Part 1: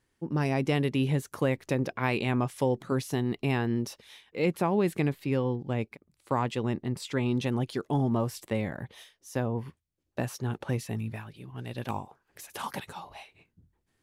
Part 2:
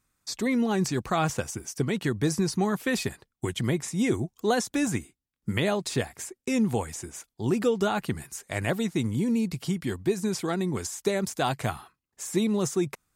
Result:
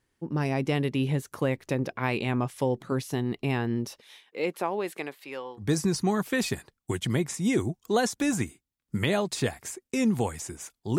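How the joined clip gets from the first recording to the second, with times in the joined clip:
part 1
0:03.99–0:05.65: high-pass filter 220 Hz → 880 Hz
0:05.61: continue with part 2 from 0:02.15, crossfade 0.08 s

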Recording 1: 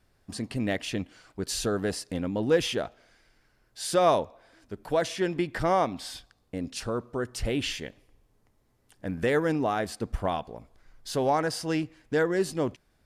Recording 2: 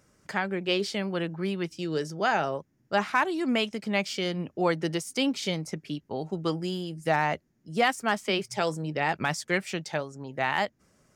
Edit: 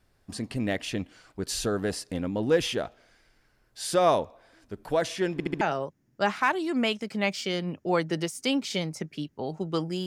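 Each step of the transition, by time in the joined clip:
recording 1
0:05.33: stutter in place 0.07 s, 4 plays
0:05.61: continue with recording 2 from 0:02.33

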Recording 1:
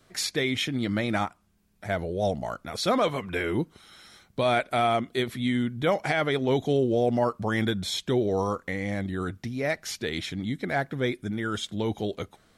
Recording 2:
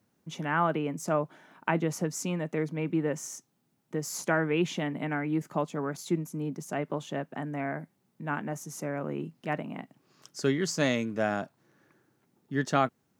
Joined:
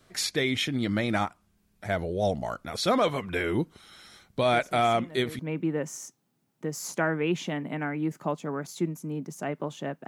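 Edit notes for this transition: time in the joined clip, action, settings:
recording 1
0:04.52: mix in recording 2 from 0:01.82 0.87 s −13 dB
0:05.39: continue with recording 2 from 0:02.69

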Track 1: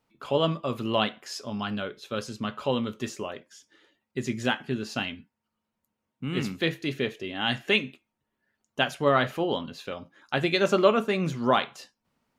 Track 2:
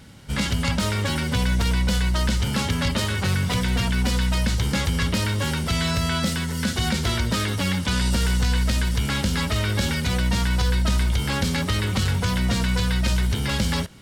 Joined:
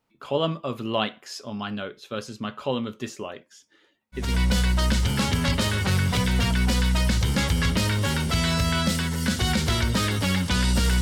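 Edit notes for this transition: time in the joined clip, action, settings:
track 1
0:04.26: continue with track 2 from 0:01.63, crossfade 0.28 s

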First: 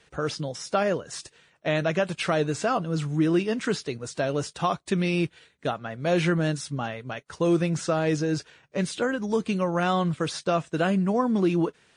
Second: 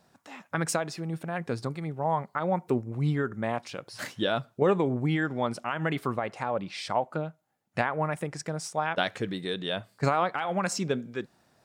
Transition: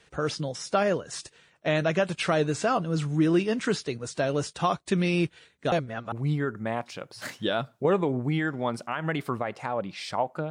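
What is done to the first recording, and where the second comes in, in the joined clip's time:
first
0:05.72–0:06.12: reverse
0:06.12: continue with second from 0:02.89

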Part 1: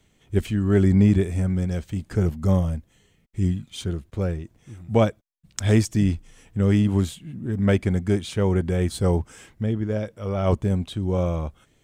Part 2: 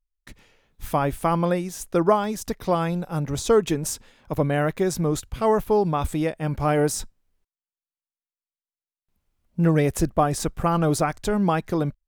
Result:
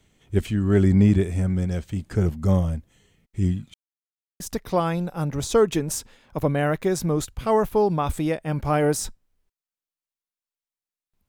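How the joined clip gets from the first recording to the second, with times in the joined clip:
part 1
0:03.74–0:04.40: silence
0:04.40: continue with part 2 from 0:02.35

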